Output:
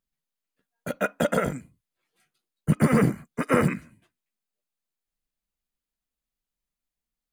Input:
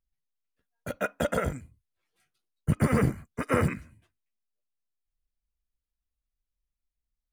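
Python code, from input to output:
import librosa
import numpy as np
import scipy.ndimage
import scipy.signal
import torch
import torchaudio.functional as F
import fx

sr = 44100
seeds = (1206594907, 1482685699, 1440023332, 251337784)

y = fx.low_shelf_res(x, sr, hz=120.0, db=-10.0, q=1.5)
y = fx.notch(y, sr, hz=5600.0, q=19.0)
y = y * librosa.db_to_amplitude(3.5)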